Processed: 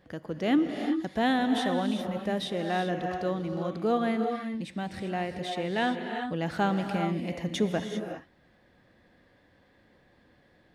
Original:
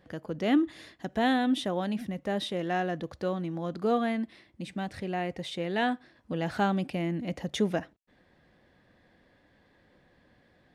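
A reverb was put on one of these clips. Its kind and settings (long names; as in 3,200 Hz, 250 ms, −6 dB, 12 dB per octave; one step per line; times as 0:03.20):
reverb whose tail is shaped and stops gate 420 ms rising, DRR 5 dB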